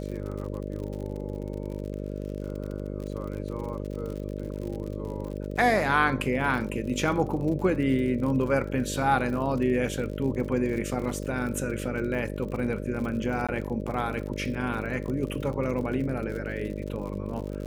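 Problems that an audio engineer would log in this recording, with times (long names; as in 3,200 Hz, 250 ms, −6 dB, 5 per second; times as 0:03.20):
mains buzz 50 Hz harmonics 12 −34 dBFS
surface crackle 63 per second −35 dBFS
0:13.47–0:13.49: drop-out 16 ms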